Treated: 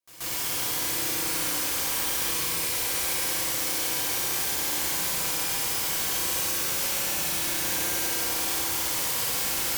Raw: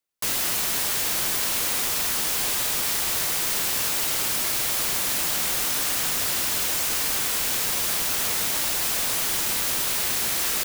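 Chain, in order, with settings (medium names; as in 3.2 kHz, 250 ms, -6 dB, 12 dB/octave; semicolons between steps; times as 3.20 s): peak limiter -19 dBFS, peak gain reduction 7 dB; on a send: reverse echo 142 ms -16 dB; on the sum: FDN reverb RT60 3.8 s, high-frequency decay 0.75×, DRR -8 dB; speed mistake 44.1 kHz file played as 48 kHz; trim -6.5 dB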